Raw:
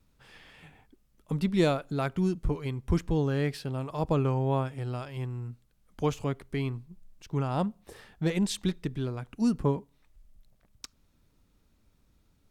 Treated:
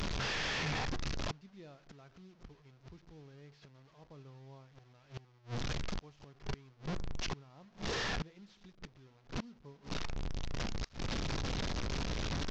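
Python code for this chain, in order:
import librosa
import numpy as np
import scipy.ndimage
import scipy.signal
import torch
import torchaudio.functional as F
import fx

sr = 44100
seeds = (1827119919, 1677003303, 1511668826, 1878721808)

y = fx.delta_mod(x, sr, bps=32000, step_db=-30.5)
y = fx.rev_fdn(y, sr, rt60_s=0.61, lf_ratio=1.25, hf_ratio=0.45, size_ms=42.0, drr_db=15.5)
y = fx.gate_flip(y, sr, shuts_db=-28.0, range_db=-30)
y = y * librosa.db_to_amplitude(1.0)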